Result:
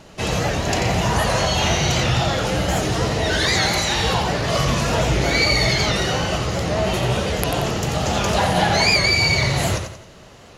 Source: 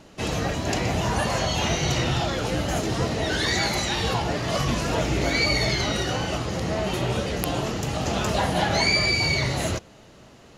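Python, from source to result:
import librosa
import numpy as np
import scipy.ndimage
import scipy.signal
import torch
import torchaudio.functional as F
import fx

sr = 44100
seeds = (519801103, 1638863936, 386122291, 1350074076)

p1 = fx.peak_eq(x, sr, hz=280.0, db=-5.5, octaves=0.64)
p2 = 10.0 ** (-19.5 / 20.0) * np.tanh(p1 / 10.0 ** (-19.5 / 20.0))
p3 = p1 + (p2 * 10.0 ** (-5.0 / 20.0))
p4 = fx.echo_feedback(p3, sr, ms=88, feedback_pct=38, wet_db=-7.0)
p5 = fx.record_warp(p4, sr, rpm=78.0, depth_cents=100.0)
y = p5 * 10.0 ** (1.5 / 20.0)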